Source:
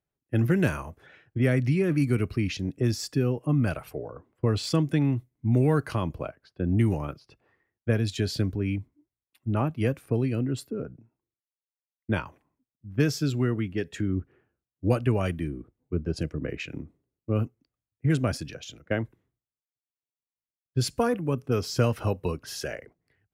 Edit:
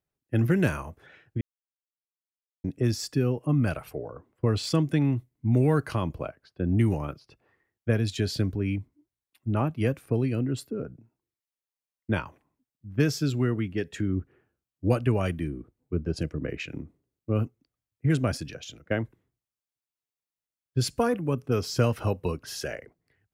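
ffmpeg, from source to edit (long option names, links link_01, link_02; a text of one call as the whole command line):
ffmpeg -i in.wav -filter_complex "[0:a]asplit=3[link_01][link_02][link_03];[link_01]atrim=end=1.41,asetpts=PTS-STARTPTS,afade=type=out:start_time=1.406:duration=0.004:curve=hsin[link_04];[link_02]atrim=start=1.41:end=2.64,asetpts=PTS-STARTPTS,volume=0[link_05];[link_03]atrim=start=2.64,asetpts=PTS-STARTPTS,afade=type=in:duration=0.004:curve=hsin[link_06];[link_04][link_05][link_06]concat=n=3:v=0:a=1" out.wav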